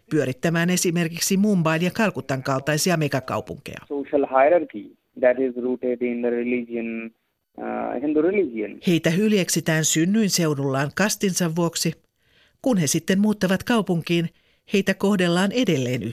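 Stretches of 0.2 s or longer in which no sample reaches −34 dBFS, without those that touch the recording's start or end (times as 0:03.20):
0:04.86–0:05.17
0:07.08–0:07.58
0:11.93–0:12.64
0:14.27–0:14.70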